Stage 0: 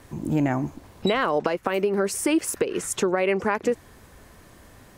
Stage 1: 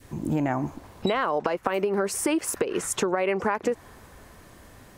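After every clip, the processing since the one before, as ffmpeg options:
ffmpeg -i in.wav -af "adynamicequalizer=threshold=0.0178:dfrequency=940:dqfactor=0.84:tfrequency=940:tqfactor=0.84:attack=5:release=100:ratio=0.375:range=3:mode=boostabove:tftype=bell,acompressor=threshold=-21dB:ratio=5" out.wav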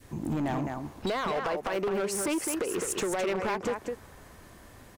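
ffmpeg -i in.wav -af "aecho=1:1:210:0.447,asoftclip=type=hard:threshold=-23dB,volume=-2.5dB" out.wav

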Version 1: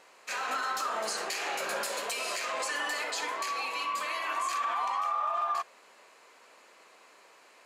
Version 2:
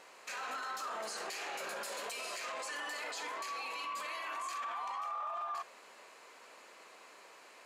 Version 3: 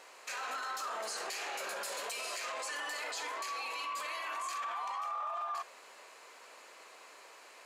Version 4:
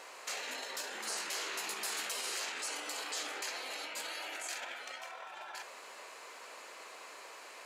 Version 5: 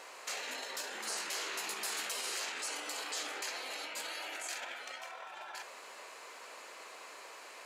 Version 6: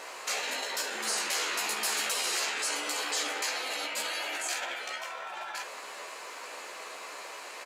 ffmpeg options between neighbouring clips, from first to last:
ffmpeg -i in.wav -af "alimiter=level_in=10.5dB:limit=-24dB:level=0:latency=1:release=18,volume=-10.5dB,volume=1dB" out.wav
ffmpeg -i in.wav -af "bass=frequency=250:gain=-10,treble=frequency=4000:gain=2,volume=1.5dB" out.wav
ffmpeg -i in.wav -af "afftfilt=real='re*lt(hypot(re,im),0.0224)':imag='im*lt(hypot(re,im),0.0224)':win_size=1024:overlap=0.75,volume=4.5dB" out.wav
ffmpeg -i in.wav -af anull out.wav
ffmpeg -i in.wav -filter_complex "[0:a]asplit=2[link_01][link_02];[link_02]adelay=14,volume=-5dB[link_03];[link_01][link_03]amix=inputs=2:normalize=0,volume=6.5dB" out.wav

